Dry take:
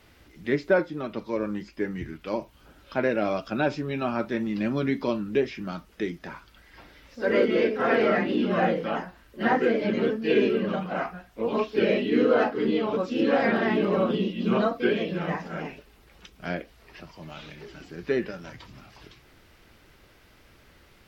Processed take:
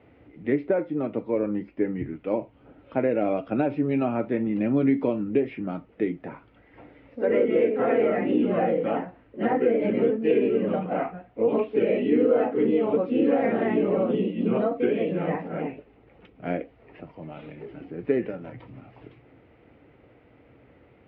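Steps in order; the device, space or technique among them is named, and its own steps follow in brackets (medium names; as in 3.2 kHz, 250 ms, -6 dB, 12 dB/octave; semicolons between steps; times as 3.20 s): dynamic bell 3 kHz, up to +4 dB, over -41 dBFS, Q 0.75; bass amplifier (compression, threshold -23 dBFS, peak gain reduction 8 dB; cabinet simulation 72–2300 Hz, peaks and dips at 120 Hz +7 dB, 280 Hz +9 dB, 480 Hz +8 dB, 720 Hz +4 dB, 1.1 kHz -5 dB, 1.6 kHz -8 dB)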